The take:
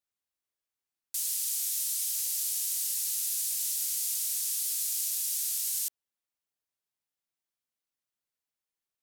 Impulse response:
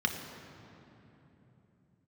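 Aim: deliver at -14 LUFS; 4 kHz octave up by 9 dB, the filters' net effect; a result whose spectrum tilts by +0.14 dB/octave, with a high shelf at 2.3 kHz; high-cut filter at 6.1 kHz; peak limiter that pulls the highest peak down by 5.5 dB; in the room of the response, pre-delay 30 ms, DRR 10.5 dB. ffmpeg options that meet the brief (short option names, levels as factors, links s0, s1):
-filter_complex "[0:a]lowpass=6100,highshelf=f=2300:g=9,equalizer=f=4000:t=o:g=4,alimiter=limit=0.0708:level=0:latency=1,asplit=2[s0][s1];[1:a]atrim=start_sample=2205,adelay=30[s2];[s1][s2]afir=irnorm=-1:irlink=0,volume=0.119[s3];[s0][s3]amix=inputs=2:normalize=0,volume=6.31"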